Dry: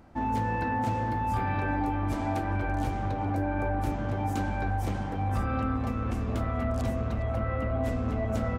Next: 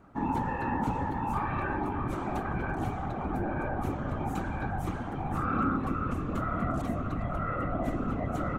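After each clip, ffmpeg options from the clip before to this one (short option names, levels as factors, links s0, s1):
-af "equalizer=f=250:t=o:w=0.33:g=6,equalizer=f=1250:t=o:w=0.33:g=11,equalizer=f=5000:t=o:w=0.33:g=-7,afftfilt=real='hypot(re,im)*cos(2*PI*random(0))':imag='hypot(re,im)*sin(2*PI*random(1))':win_size=512:overlap=0.75,volume=1.26"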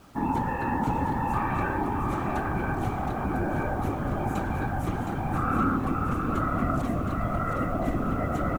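-filter_complex "[0:a]acrusher=bits=9:mix=0:aa=0.000001,asplit=2[s0][s1];[s1]aecho=0:1:717:0.501[s2];[s0][s2]amix=inputs=2:normalize=0,volume=1.41"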